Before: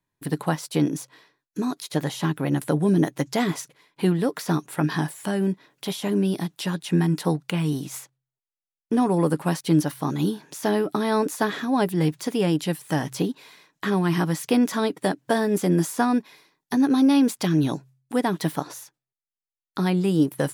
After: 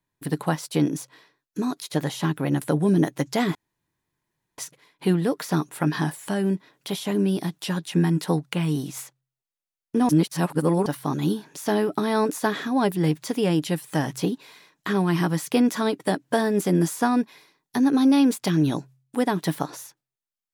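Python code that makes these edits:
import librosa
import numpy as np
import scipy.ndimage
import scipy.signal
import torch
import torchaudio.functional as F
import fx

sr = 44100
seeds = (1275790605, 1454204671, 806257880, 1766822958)

y = fx.edit(x, sr, fx.insert_room_tone(at_s=3.55, length_s=1.03),
    fx.reverse_span(start_s=9.06, length_s=0.77), tone=tone)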